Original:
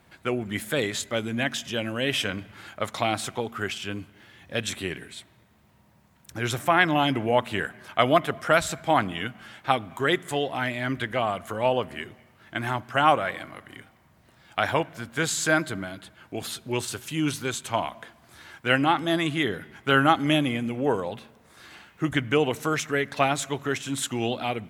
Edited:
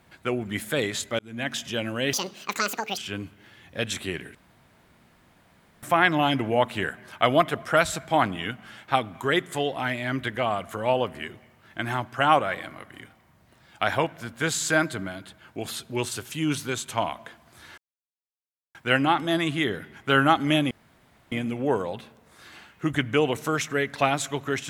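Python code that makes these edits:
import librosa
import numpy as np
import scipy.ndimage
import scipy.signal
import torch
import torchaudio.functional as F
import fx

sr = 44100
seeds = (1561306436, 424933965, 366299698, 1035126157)

y = fx.edit(x, sr, fx.fade_in_span(start_s=1.19, length_s=0.37),
    fx.speed_span(start_s=2.13, length_s=1.61, speed=1.9),
    fx.room_tone_fill(start_s=5.11, length_s=1.48),
    fx.insert_silence(at_s=18.54, length_s=0.97),
    fx.insert_room_tone(at_s=20.5, length_s=0.61), tone=tone)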